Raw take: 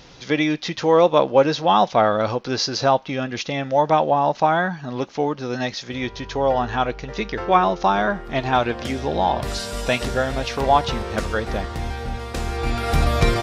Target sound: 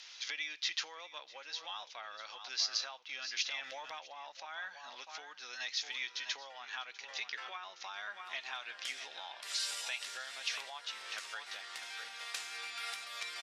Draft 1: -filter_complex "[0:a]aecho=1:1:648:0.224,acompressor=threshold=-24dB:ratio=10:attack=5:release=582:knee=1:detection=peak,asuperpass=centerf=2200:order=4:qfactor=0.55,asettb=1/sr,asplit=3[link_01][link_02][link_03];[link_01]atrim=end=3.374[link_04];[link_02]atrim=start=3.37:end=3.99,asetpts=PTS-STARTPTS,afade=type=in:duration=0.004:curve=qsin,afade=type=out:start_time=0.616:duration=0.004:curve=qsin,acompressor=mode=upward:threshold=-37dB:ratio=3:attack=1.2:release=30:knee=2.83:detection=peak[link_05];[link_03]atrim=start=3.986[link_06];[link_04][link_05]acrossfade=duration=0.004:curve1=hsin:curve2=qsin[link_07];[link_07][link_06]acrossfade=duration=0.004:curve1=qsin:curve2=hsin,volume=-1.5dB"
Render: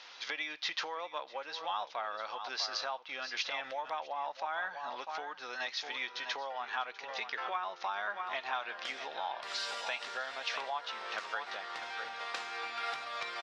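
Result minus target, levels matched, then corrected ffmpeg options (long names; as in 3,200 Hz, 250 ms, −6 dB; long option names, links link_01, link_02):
4,000 Hz band −3.5 dB
-filter_complex "[0:a]aecho=1:1:648:0.224,acompressor=threshold=-24dB:ratio=10:attack=5:release=582:knee=1:detection=peak,asuperpass=centerf=5000:order=4:qfactor=0.55,asettb=1/sr,asplit=3[link_01][link_02][link_03];[link_01]atrim=end=3.374[link_04];[link_02]atrim=start=3.37:end=3.99,asetpts=PTS-STARTPTS,afade=type=in:duration=0.004:curve=qsin,afade=type=out:start_time=0.616:duration=0.004:curve=qsin,acompressor=mode=upward:threshold=-37dB:ratio=3:attack=1.2:release=30:knee=2.83:detection=peak[link_05];[link_03]atrim=start=3.986[link_06];[link_04][link_05]acrossfade=duration=0.004:curve1=hsin:curve2=qsin[link_07];[link_07][link_06]acrossfade=duration=0.004:curve1=qsin:curve2=hsin,volume=-1.5dB"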